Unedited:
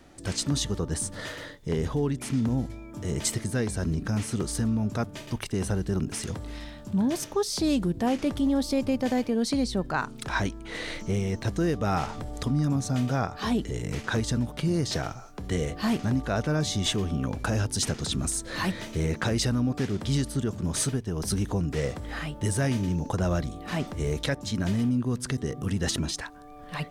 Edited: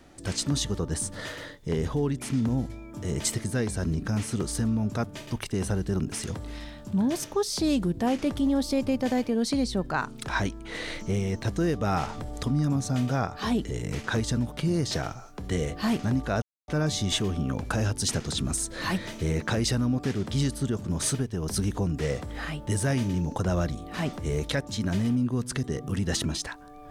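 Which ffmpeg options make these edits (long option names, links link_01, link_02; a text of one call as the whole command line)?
ffmpeg -i in.wav -filter_complex "[0:a]asplit=2[link_01][link_02];[link_01]atrim=end=16.42,asetpts=PTS-STARTPTS,afade=type=out:start_time=16.416:duration=0.004:curve=hsin,apad=pad_dur=0.26[link_03];[link_02]atrim=start=16.42,asetpts=PTS-STARTPTS,afade=type=in:duration=0.004:curve=hsin[link_04];[link_03][link_04]concat=n=2:v=0:a=1" out.wav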